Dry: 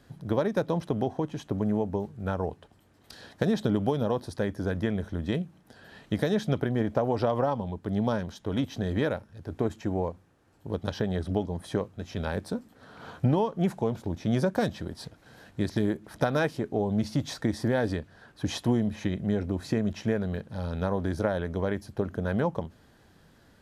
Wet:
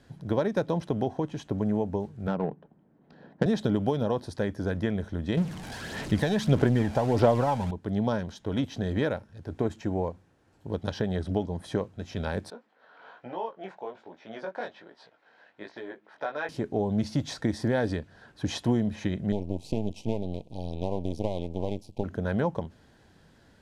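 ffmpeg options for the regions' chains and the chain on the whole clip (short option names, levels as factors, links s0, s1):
-filter_complex "[0:a]asettb=1/sr,asplit=3[s0][s1][s2];[s0]atrim=end=2.274[s3];[s1]atrim=start=2.27:end=3.46,asetpts=PTS-STARTPTS,afade=t=in:d=0.004:c=qsin,afade=t=out:st=1.186:d=0.004:c=qsin,lowshelf=f=120:t=q:w=3:g=-9.5,adynamicsmooth=sensitivity=2:basefreq=1100[s4];[s2]atrim=start=3.456[s5];[s3][s4]acrossfade=d=0.004:c1=hsin:c2=qsin[s6];[s6][s5]acrossfade=d=0.004:c1=qsin:c2=hsin,asettb=1/sr,asplit=3[s7][s8][s9];[s7]atrim=end=5.374[s10];[s8]atrim=start=5.37:end=7.71,asetpts=PTS-STARTPTS,afade=t=in:d=0.004:c=qsin,afade=t=out:st=2.336:d=0.004:c=qsin,aeval=exprs='val(0)+0.5*0.0178*sgn(val(0))':c=same,aphaser=in_gain=1:out_gain=1:delay=1.3:decay=0.43:speed=1.6:type=sinusoidal[s11];[s9]atrim=start=7.706[s12];[s10][s11]acrossfade=d=0.004:c1=hsin:c2=qsin[s13];[s13][s12]acrossfade=d=0.004:c1=qsin:c2=hsin,asettb=1/sr,asplit=3[s14][s15][s16];[s14]atrim=end=12.504[s17];[s15]atrim=start=12.5:end=16.49,asetpts=PTS-STARTPTS,afade=t=in:d=0.004:c=qsin,afade=t=out:st=3.986:d=0.004:c=qsin,highpass=600,lowpass=2700,flanger=delay=16.5:depth=5:speed=1.2[s18];[s16]atrim=start=16.486[s19];[s17][s18]acrossfade=d=0.004:c1=hsin:c2=qsin[s20];[s20][s19]acrossfade=d=0.004:c1=qsin:c2=hsin,asettb=1/sr,asplit=3[s21][s22][s23];[s21]atrim=end=19.324[s24];[s22]atrim=start=19.32:end=22.04,asetpts=PTS-STARTPTS,afade=t=in:d=0.004:c=qsin,afade=t=out:st=2.716:d=0.004:c=qsin,aeval=exprs='max(val(0),0)':c=same,asuperstop=centerf=1500:order=8:qfactor=0.96[s25];[s23]atrim=start=22.036[s26];[s24][s25]acrossfade=d=0.004:c1=hsin:c2=qsin[s27];[s27][s26]acrossfade=d=0.004:c1=qsin:c2=hsin,lowpass=9600,bandreject=f=1200:w=13"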